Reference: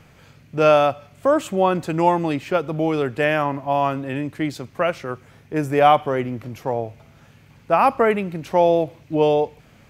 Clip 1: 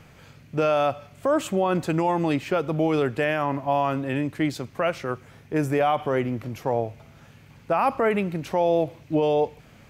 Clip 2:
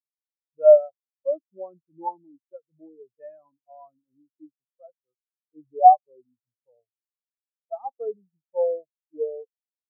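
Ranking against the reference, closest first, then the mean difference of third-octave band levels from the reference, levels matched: 1, 2; 3.0 dB, 19.0 dB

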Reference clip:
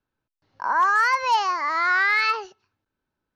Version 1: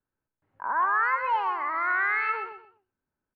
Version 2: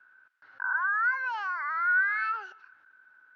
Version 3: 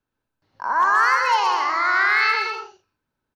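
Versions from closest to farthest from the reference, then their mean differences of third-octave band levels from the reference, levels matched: 3, 1, 2; 4.0 dB, 6.0 dB, 7.5 dB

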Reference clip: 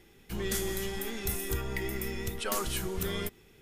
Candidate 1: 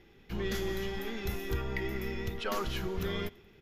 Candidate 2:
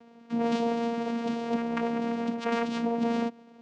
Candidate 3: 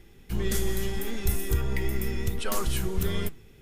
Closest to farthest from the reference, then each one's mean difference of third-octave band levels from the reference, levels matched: 3, 1, 2; 2.5 dB, 3.5 dB, 13.0 dB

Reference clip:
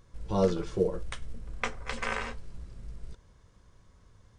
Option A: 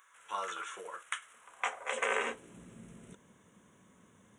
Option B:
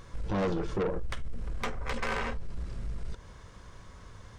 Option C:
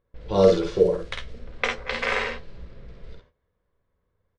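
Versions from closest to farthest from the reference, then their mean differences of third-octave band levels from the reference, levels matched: C, B, A; 4.5 dB, 6.0 dB, 10.5 dB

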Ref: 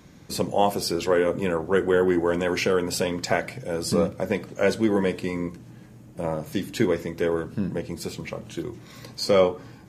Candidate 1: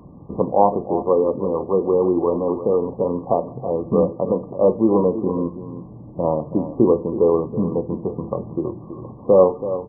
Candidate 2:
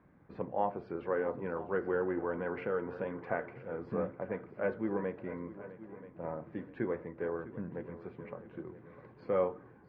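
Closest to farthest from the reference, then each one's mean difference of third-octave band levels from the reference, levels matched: 2, 1; 7.0 dB, 10.0 dB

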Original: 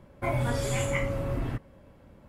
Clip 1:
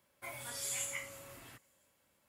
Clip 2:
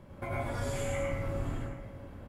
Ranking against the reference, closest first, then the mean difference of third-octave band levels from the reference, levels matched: 2, 1; 6.0 dB, 9.5 dB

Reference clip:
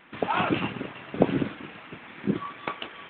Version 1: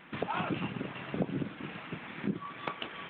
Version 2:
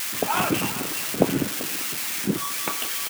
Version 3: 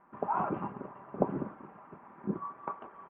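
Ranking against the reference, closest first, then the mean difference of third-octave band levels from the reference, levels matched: 1, 3, 2; 4.0 dB, 5.5 dB, 14.5 dB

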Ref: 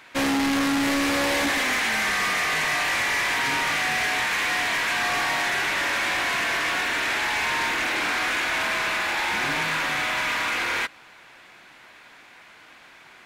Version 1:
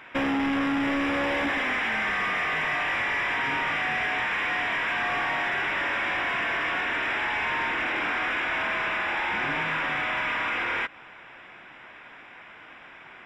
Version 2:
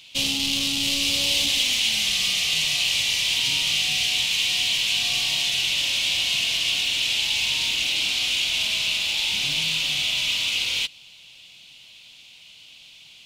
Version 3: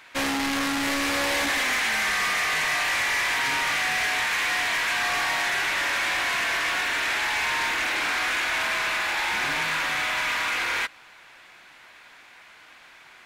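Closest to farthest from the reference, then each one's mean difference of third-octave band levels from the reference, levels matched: 3, 1, 2; 2.0 dB, 5.5 dB, 8.5 dB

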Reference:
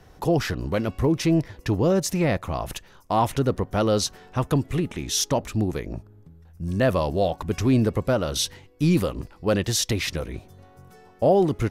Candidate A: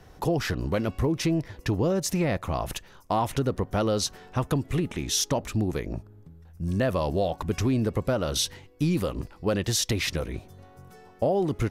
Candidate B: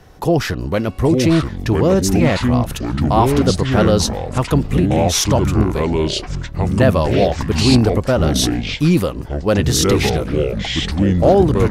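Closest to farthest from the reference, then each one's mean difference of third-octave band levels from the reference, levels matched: A, B; 2.0 dB, 7.0 dB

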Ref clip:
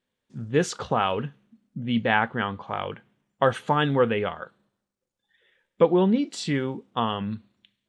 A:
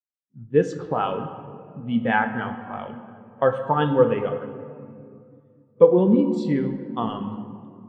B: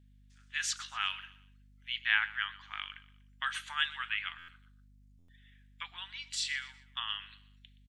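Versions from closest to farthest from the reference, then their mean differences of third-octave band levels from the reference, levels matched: A, B; 6.5 dB, 13.5 dB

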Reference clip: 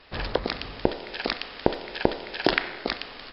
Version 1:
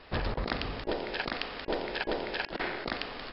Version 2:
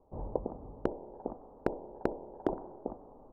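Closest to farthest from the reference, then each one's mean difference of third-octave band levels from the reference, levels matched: 1, 2; 6.0 dB, 11.0 dB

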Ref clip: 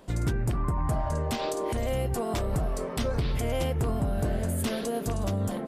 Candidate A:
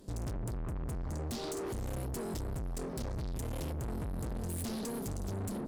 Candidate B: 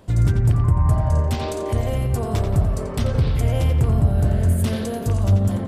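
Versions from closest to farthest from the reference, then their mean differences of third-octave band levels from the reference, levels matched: A, B; 4.5 dB, 6.0 dB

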